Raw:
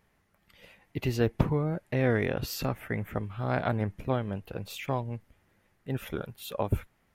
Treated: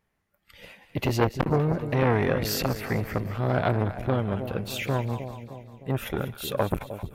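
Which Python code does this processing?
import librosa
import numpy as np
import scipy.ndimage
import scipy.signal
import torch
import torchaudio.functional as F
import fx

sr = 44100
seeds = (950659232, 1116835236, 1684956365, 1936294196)

y = fx.noise_reduce_blind(x, sr, reduce_db=14)
y = fx.echo_split(y, sr, split_hz=700.0, low_ms=307, high_ms=196, feedback_pct=52, wet_db=-12.5)
y = fx.transformer_sat(y, sr, knee_hz=1300.0)
y = y * 10.0 ** (7.5 / 20.0)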